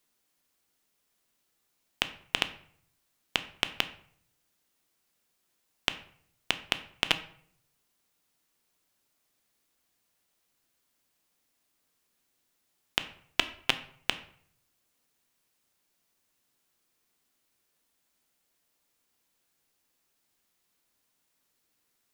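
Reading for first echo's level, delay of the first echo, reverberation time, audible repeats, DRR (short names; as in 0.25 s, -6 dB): none, none, 0.60 s, none, 10.0 dB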